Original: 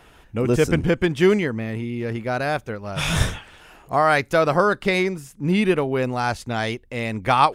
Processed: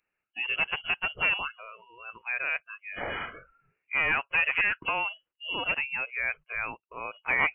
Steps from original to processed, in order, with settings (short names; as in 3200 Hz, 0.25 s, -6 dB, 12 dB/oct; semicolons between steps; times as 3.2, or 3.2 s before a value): one-sided fold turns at -14.5 dBFS; HPF 370 Hz 12 dB/oct; inverted band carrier 3100 Hz; spectral noise reduction 25 dB; gain -6 dB